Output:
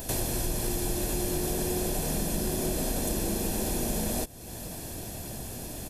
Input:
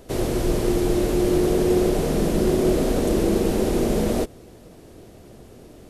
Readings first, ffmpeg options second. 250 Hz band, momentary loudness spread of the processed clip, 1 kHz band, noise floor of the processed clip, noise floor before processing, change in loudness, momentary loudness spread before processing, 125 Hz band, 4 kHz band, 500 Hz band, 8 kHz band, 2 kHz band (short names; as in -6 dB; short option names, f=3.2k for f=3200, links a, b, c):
-11.0 dB, 8 LU, -6.5 dB, -40 dBFS, -46 dBFS, -9.0 dB, 4 LU, -7.0 dB, -2.0 dB, -13.0 dB, +3.5 dB, -5.0 dB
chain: -af "aemphasis=mode=production:type=75kf,aecho=1:1:1.2:0.45,acompressor=threshold=-37dB:ratio=3,volume=5dB"